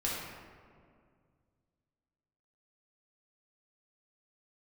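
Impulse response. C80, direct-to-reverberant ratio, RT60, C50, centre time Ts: 1.5 dB, -6.0 dB, 2.1 s, -1.0 dB, 97 ms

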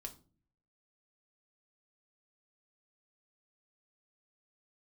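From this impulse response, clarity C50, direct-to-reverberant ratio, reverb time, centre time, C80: 15.5 dB, 3.5 dB, 0.40 s, 9 ms, 21.0 dB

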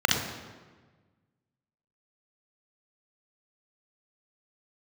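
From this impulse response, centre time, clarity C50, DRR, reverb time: 49 ms, 2.0 dB, 1.0 dB, 1.4 s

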